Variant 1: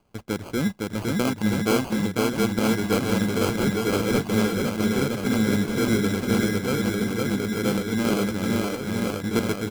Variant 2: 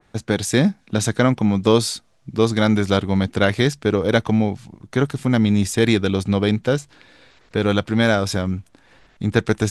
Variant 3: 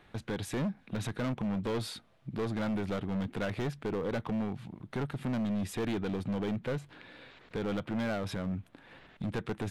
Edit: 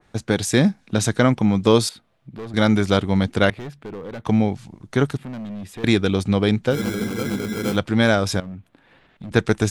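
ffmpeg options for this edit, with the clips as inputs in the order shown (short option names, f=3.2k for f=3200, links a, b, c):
-filter_complex "[2:a]asplit=4[a][b][c][d];[1:a]asplit=6[e][f][g][h][i][j];[e]atrim=end=1.892[k];[a]atrim=start=1.888:end=2.542[l];[f]atrim=start=2.538:end=3.502[m];[b]atrim=start=3.498:end=4.252[n];[g]atrim=start=4.248:end=5.172[o];[c]atrim=start=5.168:end=5.842[p];[h]atrim=start=5.838:end=6.79[q];[0:a]atrim=start=6.69:end=7.8[r];[i]atrim=start=7.7:end=8.402[s];[d]atrim=start=8.398:end=9.312[t];[j]atrim=start=9.308[u];[k][l]acrossfade=d=0.004:c1=hsin:c2=hsin[v];[v][m]acrossfade=d=0.004:c1=hsin:c2=hsin[w];[w][n]acrossfade=d=0.004:c1=hsin:c2=hsin[x];[x][o]acrossfade=d=0.004:c1=hsin:c2=hsin[y];[y][p]acrossfade=d=0.004:c1=hsin:c2=hsin[z];[z][q]acrossfade=d=0.004:c1=hsin:c2=hsin[aa];[aa][r]acrossfade=d=0.1:c1=tri:c2=tri[ab];[ab][s]acrossfade=d=0.1:c1=tri:c2=tri[ac];[ac][t]acrossfade=d=0.004:c1=hsin:c2=hsin[ad];[ad][u]acrossfade=d=0.004:c1=hsin:c2=hsin"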